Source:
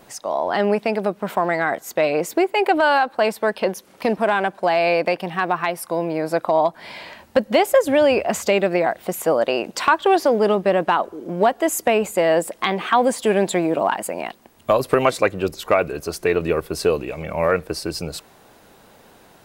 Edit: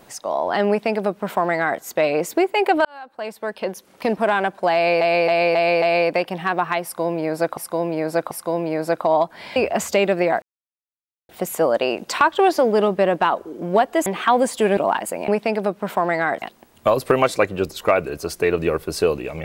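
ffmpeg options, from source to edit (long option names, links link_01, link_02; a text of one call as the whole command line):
ffmpeg -i in.wav -filter_complex "[0:a]asplit=14[link_01][link_02][link_03][link_04][link_05][link_06][link_07][link_08][link_09][link_10][link_11][link_12][link_13][link_14];[link_01]atrim=end=2.85,asetpts=PTS-STARTPTS,afade=type=out:start_time=2.846:duration=0.004:curve=hsin[link_15];[link_02]atrim=start=2.85:end=5.012,asetpts=PTS-STARTPTS,afade=type=in:duration=1.35[link_16];[link_03]atrim=start=4.738:end=5.012[link_17];[link_04]atrim=start=4.738:end=5.012[link_18];[link_05]atrim=start=4.738:end=5.012[link_19];[link_06]atrim=start=4.738:end=6.492[link_20];[link_07]atrim=start=5.748:end=6.492[link_21];[link_08]atrim=start=5.748:end=7.002[link_22];[link_09]atrim=start=8.098:end=8.96,asetpts=PTS-STARTPTS,afade=type=out:start_time=0.858:duration=0.004:curve=hsin,apad=pad_dur=0.87[link_23];[link_10]atrim=start=8.96:end=11.732,asetpts=PTS-STARTPTS,afade=type=in:duration=0.004:curve=hsin[link_24];[link_11]atrim=start=12.708:end=13.422[link_25];[link_12]atrim=start=13.738:end=14.252[link_26];[link_13]atrim=start=0.678:end=1.822[link_27];[link_14]atrim=start=14.248[link_28];[link_15][link_16]concat=n=2:v=0:a=1[link_29];[link_29][link_17]acrossfade=duration=0.004:curve1=hsin:curve2=hsin[link_30];[link_30][link_18]acrossfade=duration=0.004:curve1=hsin:curve2=hsin[link_31];[link_31][link_19]acrossfade=duration=0.004:curve1=hsin:curve2=hsin[link_32];[link_32][link_20]acrossfade=duration=0.004:curve1=hsin:curve2=hsin[link_33];[link_33][link_21]acrossfade=duration=0.004:curve1=hsin:curve2=hsin[link_34];[link_34][link_22]acrossfade=duration=0.004:curve1=hsin:curve2=hsin[link_35];[link_23][link_24]concat=n=2:v=0:a=1[link_36];[link_35][link_36]acrossfade=duration=0.004:curve1=hsin:curve2=hsin[link_37];[link_37][link_25]acrossfade=duration=0.004:curve1=hsin:curve2=hsin[link_38];[link_38][link_26]acrossfade=duration=0.004:curve1=hsin:curve2=hsin[link_39];[link_39][link_27]acrossfade=duration=0.004:curve1=hsin:curve2=hsin[link_40];[link_40][link_28]acrossfade=duration=0.004:curve1=hsin:curve2=hsin" out.wav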